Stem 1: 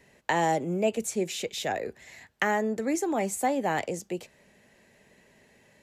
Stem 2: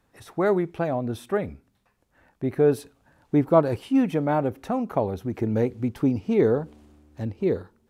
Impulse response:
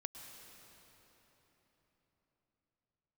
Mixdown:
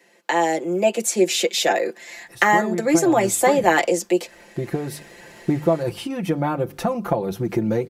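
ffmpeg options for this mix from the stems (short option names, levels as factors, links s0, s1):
-filter_complex "[0:a]highpass=f=240:w=0.5412,highpass=f=240:w=1.3066,volume=1.33[s0];[1:a]highshelf=f=5000:g=6,bandreject=f=50:t=h:w=6,bandreject=f=100:t=h:w=6,bandreject=f=150:t=h:w=6,bandreject=f=200:t=h:w=6,acompressor=threshold=0.0398:ratio=4,adelay=2150,volume=0.596[s1];[s0][s1]amix=inputs=2:normalize=0,equalizer=f=4900:t=o:w=0.33:g=2.5,aecho=1:1:5.8:0.76,dynaudnorm=f=230:g=7:m=3.98"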